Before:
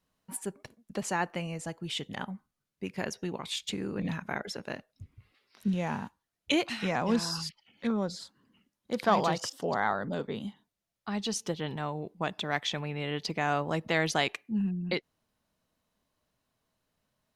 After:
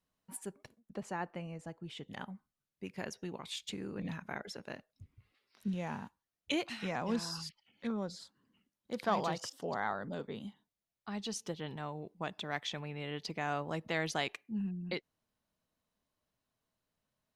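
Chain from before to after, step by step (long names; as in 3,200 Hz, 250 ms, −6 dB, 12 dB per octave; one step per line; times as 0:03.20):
0:00.79–0:02.08: high-shelf EQ 2,500 Hz −11 dB
level −7 dB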